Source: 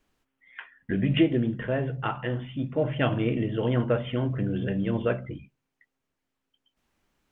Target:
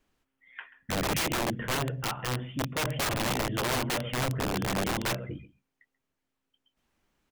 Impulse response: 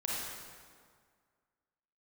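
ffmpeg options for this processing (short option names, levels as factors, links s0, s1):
-af "aecho=1:1:135:0.106,aeval=exprs='(mod(12.6*val(0)+1,2)-1)/12.6':c=same,volume=0.841"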